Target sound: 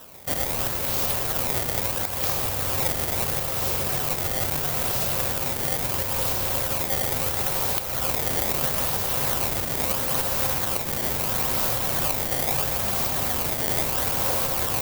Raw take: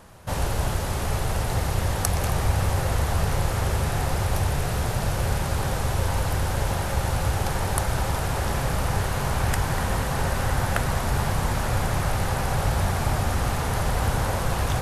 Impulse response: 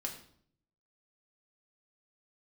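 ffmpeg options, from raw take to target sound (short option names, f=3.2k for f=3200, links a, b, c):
-filter_complex "[0:a]equalizer=f=1.7k:w=1.5:g=-7,bandreject=f=840:w=12,asplit=2[a][b];[1:a]atrim=start_sample=2205[c];[b][c]afir=irnorm=-1:irlink=0,volume=-2.5dB[d];[a][d]amix=inputs=2:normalize=0,alimiter=limit=-12.5dB:level=0:latency=1:release=359,acrusher=samples=19:mix=1:aa=0.000001:lfo=1:lforange=30.4:lforate=0.75,aemphasis=mode=production:type=bsi,volume=-1dB"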